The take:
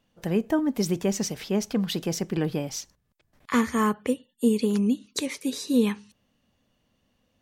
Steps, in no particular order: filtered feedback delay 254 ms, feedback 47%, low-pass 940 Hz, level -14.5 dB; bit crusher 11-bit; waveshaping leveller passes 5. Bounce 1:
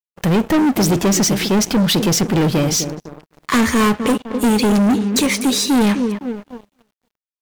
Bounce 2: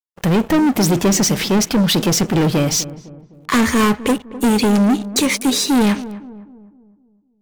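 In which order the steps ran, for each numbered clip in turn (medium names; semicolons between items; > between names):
filtered feedback delay > waveshaping leveller > bit crusher; waveshaping leveller > bit crusher > filtered feedback delay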